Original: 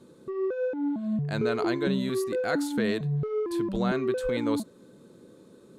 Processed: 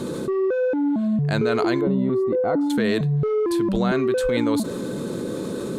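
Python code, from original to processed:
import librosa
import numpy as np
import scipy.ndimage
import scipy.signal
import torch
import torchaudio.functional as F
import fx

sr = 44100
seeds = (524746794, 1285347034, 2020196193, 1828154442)

y = fx.savgol(x, sr, points=65, at=(1.81, 2.7))
y = fx.env_flatten(y, sr, amount_pct=70)
y = F.gain(torch.from_numpy(y), 4.0).numpy()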